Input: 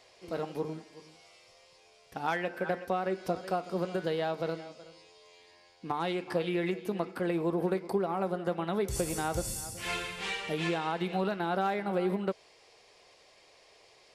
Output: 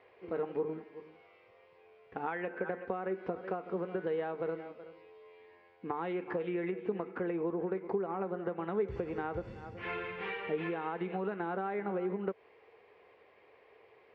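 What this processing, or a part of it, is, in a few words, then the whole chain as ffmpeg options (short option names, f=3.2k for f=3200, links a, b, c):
bass amplifier: -af "acompressor=threshold=-32dB:ratio=6,highpass=75,equalizer=f=150:t=q:w=4:g=-6,equalizer=f=440:t=q:w=4:g=7,equalizer=f=630:t=q:w=4:g=-5,lowpass=f=2.3k:w=0.5412,lowpass=f=2.3k:w=1.3066"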